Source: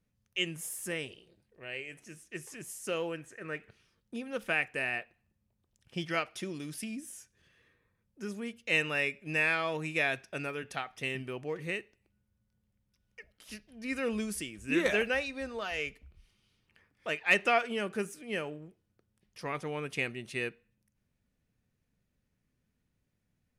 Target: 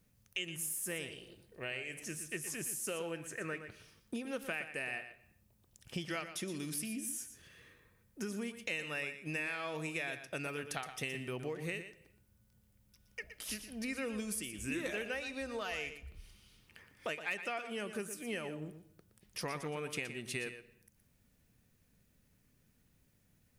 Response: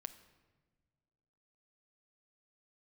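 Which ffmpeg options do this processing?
-filter_complex "[0:a]highshelf=f=7.6k:g=10.5,acompressor=threshold=-44dB:ratio=6,asplit=2[a][b];[1:a]atrim=start_sample=2205,afade=t=out:st=0.34:d=0.01,atrim=end_sample=15435,adelay=119[c];[b][c]afir=irnorm=-1:irlink=0,volume=-6dB[d];[a][d]amix=inputs=2:normalize=0,volume=6.5dB"

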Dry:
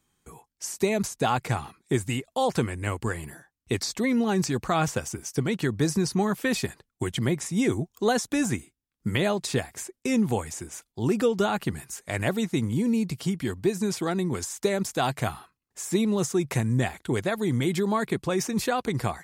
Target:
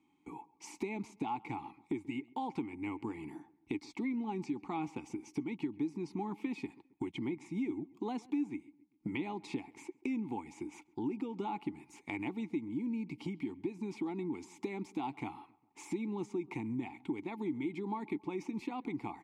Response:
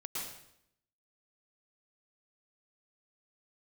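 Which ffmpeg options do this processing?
-filter_complex "[0:a]asplit=3[a][b][c];[a]bandpass=f=300:t=q:w=8,volume=0dB[d];[b]bandpass=f=870:t=q:w=8,volume=-6dB[e];[c]bandpass=f=2.24k:t=q:w=8,volume=-9dB[f];[d][e][f]amix=inputs=3:normalize=0,acompressor=threshold=-53dB:ratio=3,asplit=2[g][h];[h]adelay=135,lowpass=f=2k:p=1,volume=-22dB,asplit=2[i][j];[j]adelay=135,lowpass=f=2k:p=1,volume=0.5,asplit=2[k][l];[l]adelay=135,lowpass=f=2k:p=1,volume=0.5[m];[g][i][k][m]amix=inputs=4:normalize=0,volume=13.5dB"

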